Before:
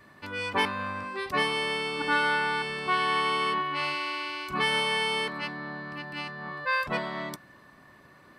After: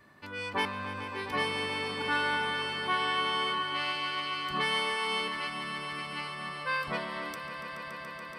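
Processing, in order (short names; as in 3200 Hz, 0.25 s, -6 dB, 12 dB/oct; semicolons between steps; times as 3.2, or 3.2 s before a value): swelling echo 0.142 s, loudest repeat 5, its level -13 dB; gain -4.5 dB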